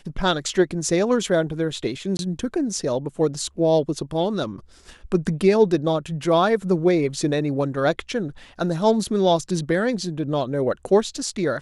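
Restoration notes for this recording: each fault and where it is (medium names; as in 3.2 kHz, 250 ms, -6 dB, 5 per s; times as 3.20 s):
2.17–2.19 s: dropout 21 ms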